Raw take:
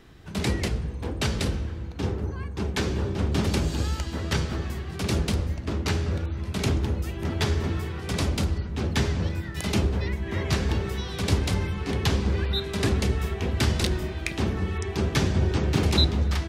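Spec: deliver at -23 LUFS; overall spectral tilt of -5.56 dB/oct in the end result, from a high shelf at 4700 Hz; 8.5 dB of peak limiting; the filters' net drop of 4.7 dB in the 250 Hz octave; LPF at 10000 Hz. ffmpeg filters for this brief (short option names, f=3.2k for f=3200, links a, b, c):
-af "lowpass=10k,equalizer=f=250:t=o:g=-7,highshelf=f=4.7k:g=-3.5,volume=6.5dB,alimiter=limit=-11.5dB:level=0:latency=1"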